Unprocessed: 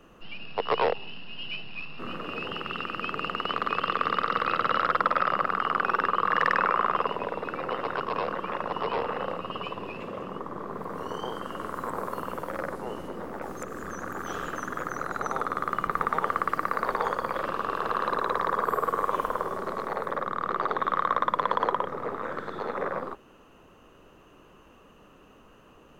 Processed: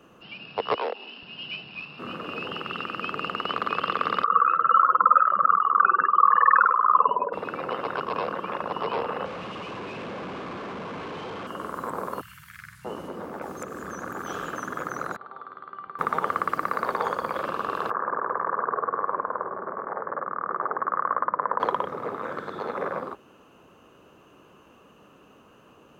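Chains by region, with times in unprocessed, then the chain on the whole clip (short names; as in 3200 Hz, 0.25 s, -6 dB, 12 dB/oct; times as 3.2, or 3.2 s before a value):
0.74–1.23 steep high-pass 220 Hz 48 dB/oct + compressor 1.5:1, threshold -35 dBFS
4.24–7.33 spectral contrast raised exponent 2.3 + LPF 8600 Hz + LFO bell 1.4 Hz 900–1800 Hz +9 dB
9.25–11.47 infinite clipping + LPF 2600 Hz
12.21–12.85 Chebyshev band-stop 130–1800 Hz, order 3 + bell 330 Hz -8.5 dB 0.99 oct + doubler 47 ms -11 dB
15.16–15.99 rippled Chebyshev low-pass 4600 Hz, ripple 6 dB + resonator 390 Hz, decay 0.53 s, mix 80%
17.9–21.6 steep low-pass 1800 Hz 48 dB/oct + low shelf 370 Hz -8 dB
whole clip: HPF 88 Hz; notch 1900 Hz, Q 14; gain +1 dB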